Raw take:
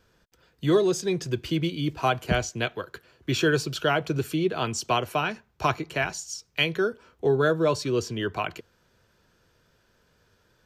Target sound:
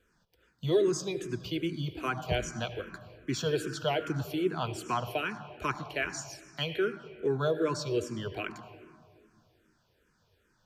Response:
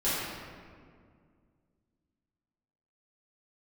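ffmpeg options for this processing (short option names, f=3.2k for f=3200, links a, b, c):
-filter_complex "[0:a]asplit=2[a][b];[1:a]atrim=start_sample=2205,adelay=73[c];[b][c]afir=irnorm=-1:irlink=0,volume=-22.5dB[d];[a][d]amix=inputs=2:normalize=0,asplit=2[e][f];[f]afreqshift=-2.5[g];[e][g]amix=inputs=2:normalize=1,volume=-3.5dB"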